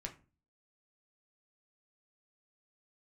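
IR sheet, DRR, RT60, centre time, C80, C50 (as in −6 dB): 2.0 dB, 0.35 s, 10 ms, 19.5 dB, 14.0 dB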